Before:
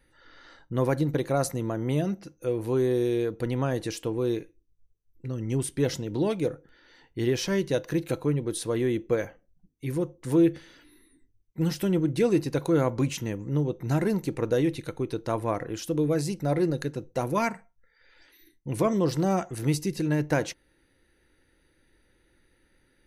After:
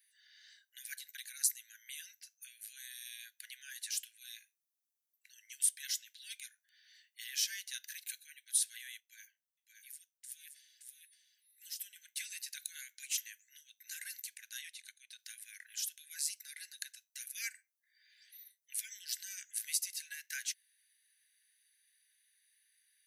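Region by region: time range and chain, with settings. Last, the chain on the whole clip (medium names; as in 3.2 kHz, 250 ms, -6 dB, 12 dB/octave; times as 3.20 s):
9.00–11.96 s: amplifier tone stack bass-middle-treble 5-5-5 + delay 571 ms -5.5 dB
14.61–15.19 s: low-pass 10 kHz + transient shaper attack -1 dB, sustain -5 dB
whole clip: Chebyshev high-pass 1.5 kHz, order 10; differentiator; trim +3.5 dB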